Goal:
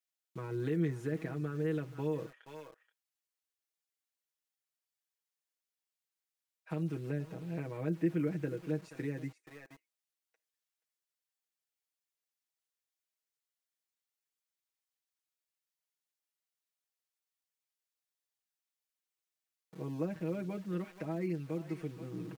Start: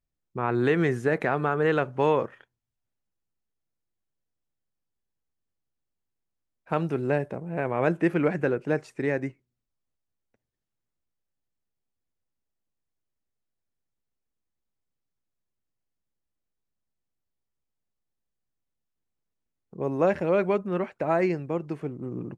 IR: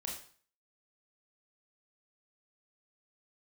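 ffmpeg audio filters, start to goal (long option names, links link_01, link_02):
-filter_complex "[0:a]equalizer=frequency=750:width_type=o:width=2.3:gain=-8.5,aecho=1:1:478:0.119,acrossover=split=410[link_01][link_02];[link_01]aeval=exprs='val(0)*gte(abs(val(0)),0.00237)':channel_layout=same[link_03];[link_02]acompressor=threshold=-47dB:ratio=12[link_04];[link_03][link_04]amix=inputs=2:normalize=0,lowshelf=frequency=330:gain=-11,aecho=1:1:6.3:0.82"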